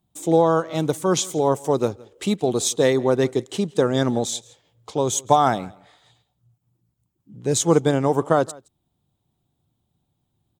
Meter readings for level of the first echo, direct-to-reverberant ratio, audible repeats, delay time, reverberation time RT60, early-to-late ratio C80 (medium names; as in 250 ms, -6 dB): -23.5 dB, no reverb, 1, 167 ms, no reverb, no reverb